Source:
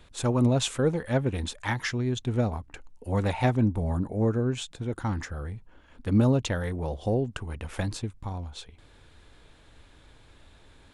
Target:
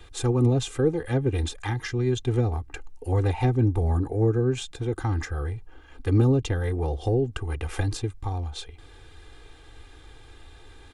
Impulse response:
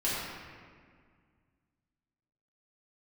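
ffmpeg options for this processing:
-filter_complex "[0:a]acrossover=split=410[s0][s1];[s1]acompressor=threshold=0.0141:ratio=6[s2];[s0][s2]amix=inputs=2:normalize=0,aecho=1:1:2.5:0.83,volume=1.41"

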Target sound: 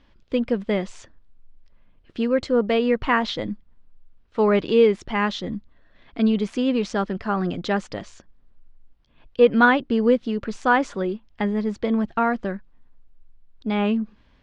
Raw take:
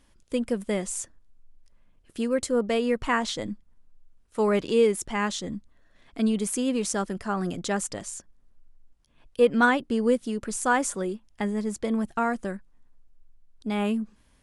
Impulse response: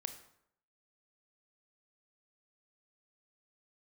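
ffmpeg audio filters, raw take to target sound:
-af "lowpass=f=4300:w=0.5412,lowpass=f=4300:w=1.3066,volume=1.68"

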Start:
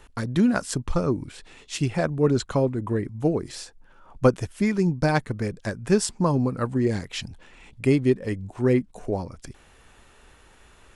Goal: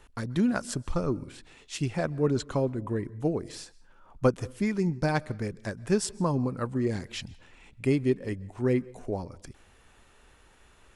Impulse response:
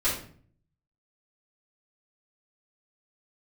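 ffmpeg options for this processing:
-filter_complex "[0:a]asplit=2[s0][s1];[1:a]atrim=start_sample=2205,afade=t=out:st=0.22:d=0.01,atrim=end_sample=10143,adelay=125[s2];[s1][s2]afir=irnorm=-1:irlink=0,volume=0.0224[s3];[s0][s3]amix=inputs=2:normalize=0,volume=0.562"

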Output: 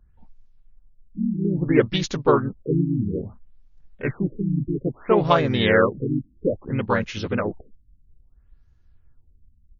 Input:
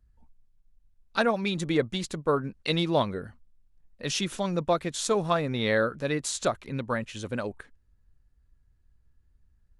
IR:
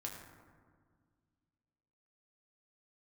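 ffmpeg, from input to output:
-filter_complex "[0:a]asplit=2[s0][s1];[s1]asetrate=37084,aresample=44100,atempo=1.18921,volume=0.708[s2];[s0][s2]amix=inputs=2:normalize=0,afftfilt=real='re*lt(b*sr/1024,310*pow(7100/310,0.5+0.5*sin(2*PI*0.6*pts/sr)))':imag='im*lt(b*sr/1024,310*pow(7100/310,0.5+0.5*sin(2*PI*0.6*pts/sr)))':win_size=1024:overlap=0.75,volume=2"

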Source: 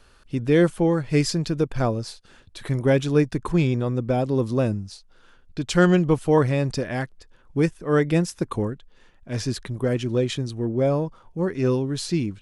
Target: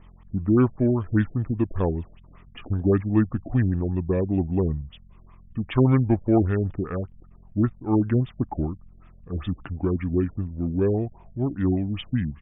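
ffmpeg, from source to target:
-af "aeval=exprs='val(0)+0.00398*(sin(2*PI*60*n/s)+sin(2*PI*2*60*n/s)/2+sin(2*PI*3*60*n/s)/3+sin(2*PI*4*60*n/s)/4+sin(2*PI*5*60*n/s)/5)':c=same,asetrate=32097,aresample=44100,atempo=1.37395,afftfilt=real='re*lt(b*sr/1024,660*pow(3700/660,0.5+0.5*sin(2*PI*5.1*pts/sr)))':imag='im*lt(b*sr/1024,660*pow(3700/660,0.5+0.5*sin(2*PI*5.1*pts/sr)))':win_size=1024:overlap=0.75,volume=0.891"

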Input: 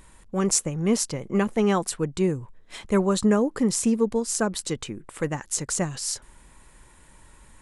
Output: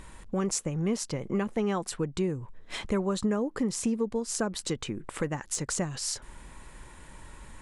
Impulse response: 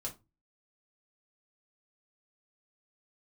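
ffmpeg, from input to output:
-af "highshelf=f=8900:g=-10.5,acompressor=threshold=0.0158:ratio=2.5,asoftclip=type=hard:threshold=0.119,volume=1.78"

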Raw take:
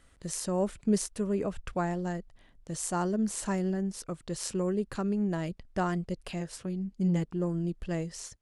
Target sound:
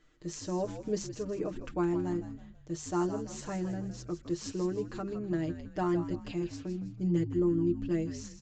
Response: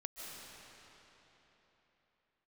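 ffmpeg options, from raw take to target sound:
-filter_complex "[0:a]equalizer=f=350:t=o:w=0.22:g=15,bandreject=f=50:t=h:w=6,bandreject=f=100:t=h:w=6,bandreject=f=150:t=h:w=6,bandreject=f=200:t=h:w=6,aecho=1:1:6.6:0.85,asplit=2[s0][s1];[s1]asplit=4[s2][s3][s4][s5];[s2]adelay=161,afreqshift=-69,volume=0.299[s6];[s3]adelay=322,afreqshift=-138,volume=0.119[s7];[s4]adelay=483,afreqshift=-207,volume=0.0479[s8];[s5]adelay=644,afreqshift=-276,volume=0.0191[s9];[s6][s7][s8][s9]amix=inputs=4:normalize=0[s10];[s0][s10]amix=inputs=2:normalize=0,aresample=16000,aresample=44100,volume=0.447"

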